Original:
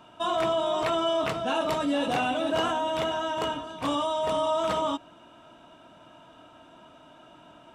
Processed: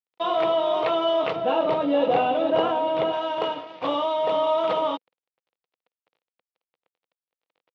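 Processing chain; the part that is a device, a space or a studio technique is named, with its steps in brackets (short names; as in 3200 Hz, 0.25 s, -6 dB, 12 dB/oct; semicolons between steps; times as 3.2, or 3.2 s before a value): blown loudspeaker (crossover distortion -43 dBFS; speaker cabinet 200–3900 Hz, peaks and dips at 240 Hz -8 dB, 500 Hz +9 dB, 790 Hz +3 dB, 1600 Hz -5 dB); 1.36–3.13 tilt -2 dB/oct; gain +3 dB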